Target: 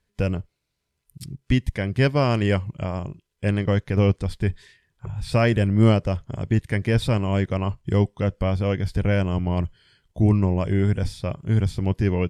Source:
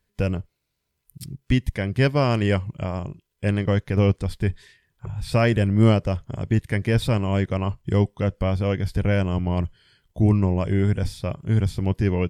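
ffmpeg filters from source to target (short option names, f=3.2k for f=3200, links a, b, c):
-af "lowpass=11k"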